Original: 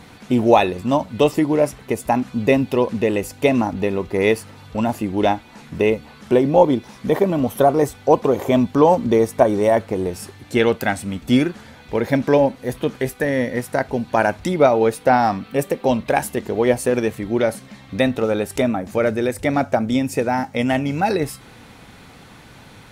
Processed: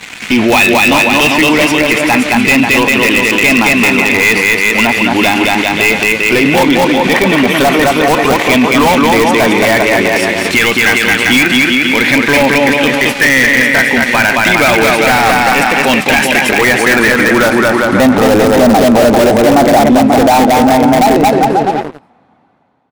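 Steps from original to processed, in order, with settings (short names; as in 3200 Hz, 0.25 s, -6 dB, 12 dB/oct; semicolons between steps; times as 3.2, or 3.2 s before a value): ending faded out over 4.64 s; band-pass sweep 2400 Hz -> 740 Hz, 16.3–18.48; bouncing-ball echo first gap 0.22 s, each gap 0.8×, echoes 5; in parallel at -7 dB: wrapped overs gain 27 dB; on the sum: resonant low shelf 360 Hz +7 dB, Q 1.5; sample leveller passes 3; maximiser +19 dB; gain -1 dB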